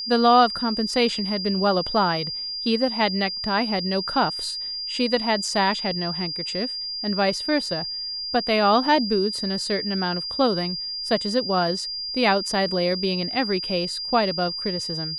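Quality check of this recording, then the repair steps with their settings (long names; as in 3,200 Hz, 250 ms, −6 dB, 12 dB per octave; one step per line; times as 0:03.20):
whistle 4,800 Hz −28 dBFS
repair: notch filter 4,800 Hz, Q 30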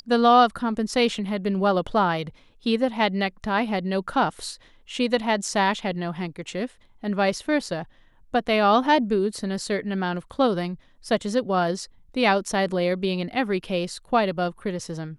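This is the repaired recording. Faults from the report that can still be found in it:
none of them is left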